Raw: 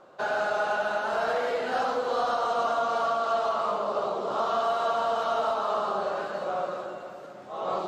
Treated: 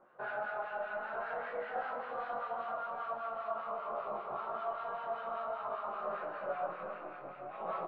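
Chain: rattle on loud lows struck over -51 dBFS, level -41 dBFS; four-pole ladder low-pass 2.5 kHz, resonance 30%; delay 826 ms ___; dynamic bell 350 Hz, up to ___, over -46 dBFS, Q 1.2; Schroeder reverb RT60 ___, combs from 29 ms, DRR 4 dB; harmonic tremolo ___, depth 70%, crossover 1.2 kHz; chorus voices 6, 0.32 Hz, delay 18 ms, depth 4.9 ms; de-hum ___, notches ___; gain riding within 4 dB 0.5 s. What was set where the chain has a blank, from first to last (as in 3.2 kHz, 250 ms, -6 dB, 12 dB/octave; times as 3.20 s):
-13.5 dB, -4 dB, 2.5 s, 5.1 Hz, 49.38 Hz, 11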